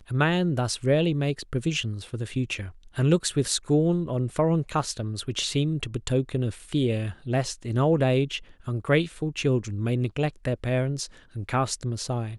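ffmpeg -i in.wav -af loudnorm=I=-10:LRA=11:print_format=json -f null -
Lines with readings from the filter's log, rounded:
"input_i" : "-26.6",
"input_tp" : "-7.3",
"input_lra" : "2.4",
"input_thresh" : "-36.7",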